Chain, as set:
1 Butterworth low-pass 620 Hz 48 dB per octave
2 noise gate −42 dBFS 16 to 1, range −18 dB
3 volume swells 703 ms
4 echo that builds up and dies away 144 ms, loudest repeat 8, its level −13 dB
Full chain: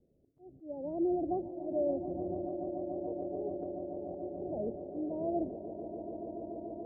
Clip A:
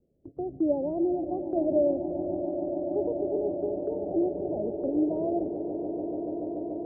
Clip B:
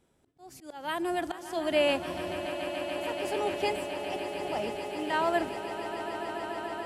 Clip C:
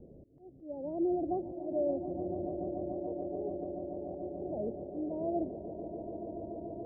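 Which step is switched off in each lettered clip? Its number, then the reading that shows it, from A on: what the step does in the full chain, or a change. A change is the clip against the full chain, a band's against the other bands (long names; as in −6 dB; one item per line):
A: 3, 1 kHz band −4.5 dB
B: 1, 1 kHz band +10.5 dB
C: 2, 125 Hz band +2.0 dB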